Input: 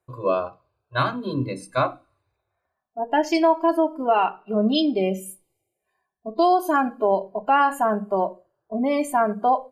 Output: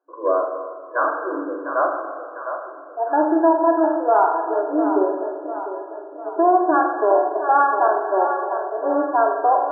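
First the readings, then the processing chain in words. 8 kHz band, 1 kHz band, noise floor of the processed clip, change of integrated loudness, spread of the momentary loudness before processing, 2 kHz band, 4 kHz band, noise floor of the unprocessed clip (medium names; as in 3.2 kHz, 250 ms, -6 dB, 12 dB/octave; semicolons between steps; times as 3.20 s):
under -35 dB, +4.0 dB, -38 dBFS, +2.5 dB, 11 LU, +2.0 dB, under -40 dB, -80 dBFS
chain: two-band feedback delay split 370 Hz, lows 93 ms, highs 700 ms, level -9.5 dB; in parallel at -3.5 dB: overload inside the chain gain 16.5 dB; on the sum: FFT band-pass 280–1700 Hz; spring tank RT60 1.7 s, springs 39/49 ms, chirp 50 ms, DRR 3.5 dB; trim -2 dB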